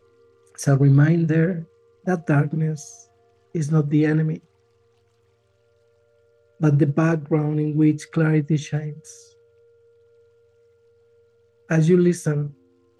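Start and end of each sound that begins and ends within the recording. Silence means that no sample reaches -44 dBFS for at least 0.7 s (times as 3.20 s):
6.60–9.28 s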